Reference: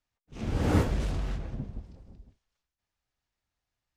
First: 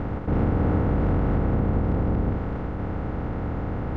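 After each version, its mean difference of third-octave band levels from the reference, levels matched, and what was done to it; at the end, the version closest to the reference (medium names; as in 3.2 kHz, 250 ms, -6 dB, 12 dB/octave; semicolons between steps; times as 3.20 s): 11.0 dB: spectral levelling over time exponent 0.2; low-pass 1.4 kHz 12 dB/octave; compression, threshold -23 dBFS, peak gain reduction 7.5 dB; trim +5 dB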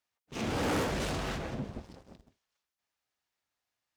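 7.5 dB: high-pass 430 Hz 6 dB/octave; in parallel at -2 dB: compression, threshold -47 dBFS, peak gain reduction 19.5 dB; on the sum: waveshaping leveller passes 2; saturation -27 dBFS, distortion -12 dB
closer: second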